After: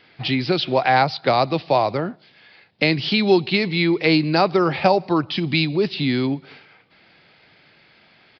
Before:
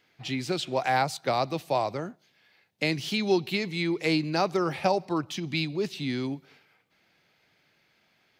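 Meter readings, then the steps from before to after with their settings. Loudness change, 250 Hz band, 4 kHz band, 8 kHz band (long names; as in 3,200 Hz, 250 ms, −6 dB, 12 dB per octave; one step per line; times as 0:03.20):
+8.5 dB, +9.0 dB, +9.0 dB, below −10 dB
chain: in parallel at +2 dB: downward compressor, threshold −37 dBFS, peak gain reduction 17 dB
on the sum: downsampling to 11,025 Hz
level +6.5 dB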